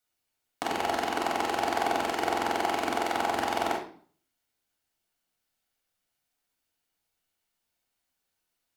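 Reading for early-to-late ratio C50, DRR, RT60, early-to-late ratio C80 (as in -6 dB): 5.5 dB, -3.0 dB, 0.50 s, 9.5 dB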